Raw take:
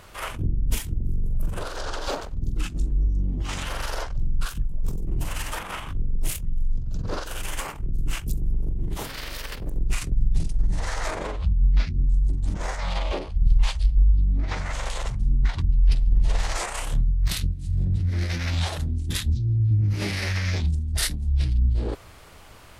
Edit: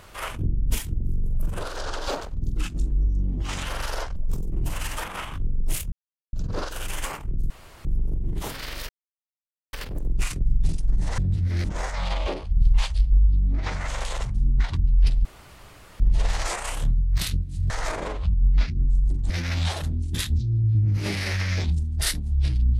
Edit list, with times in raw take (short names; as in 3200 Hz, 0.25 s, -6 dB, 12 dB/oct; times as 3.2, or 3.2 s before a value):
4.16–4.71 cut
6.47–6.88 mute
8.05–8.4 room tone
9.44 insert silence 0.84 s
10.89–12.49 swap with 17.8–18.26
16.1 insert room tone 0.75 s